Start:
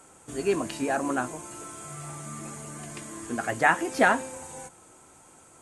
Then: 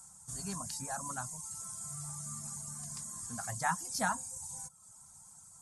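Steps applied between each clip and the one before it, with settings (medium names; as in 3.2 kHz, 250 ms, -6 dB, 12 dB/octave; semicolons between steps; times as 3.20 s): de-hum 75.13 Hz, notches 10; reverb removal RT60 0.71 s; FFT filter 190 Hz 0 dB, 340 Hz -29 dB, 940 Hz -5 dB, 2.7 kHz -19 dB, 5.2 kHz +5 dB; trim -1.5 dB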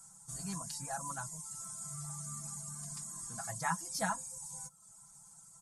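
comb 6 ms, depth 87%; trim -4 dB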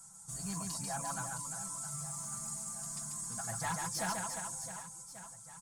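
saturation -33 dBFS, distortion -12 dB; reverse bouncing-ball echo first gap 140 ms, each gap 1.5×, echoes 5; trim +1.5 dB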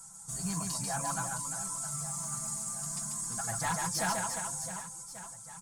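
flange 0.58 Hz, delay 2 ms, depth 6.7 ms, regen +70%; trim +9 dB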